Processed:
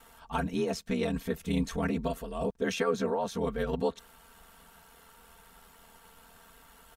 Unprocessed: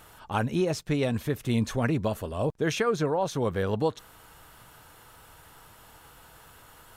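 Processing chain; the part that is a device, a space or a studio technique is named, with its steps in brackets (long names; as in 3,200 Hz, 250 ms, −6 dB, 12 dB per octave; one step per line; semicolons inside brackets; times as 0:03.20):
ring-modulated robot voice (ring modulation 42 Hz; comb filter 4.4 ms, depth 93%)
level −3.5 dB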